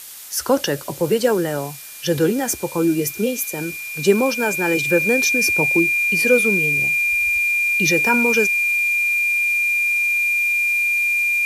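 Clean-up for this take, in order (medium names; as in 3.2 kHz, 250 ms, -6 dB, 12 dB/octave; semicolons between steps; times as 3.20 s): band-stop 2.4 kHz, Q 30; noise reduction 30 dB, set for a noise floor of -32 dBFS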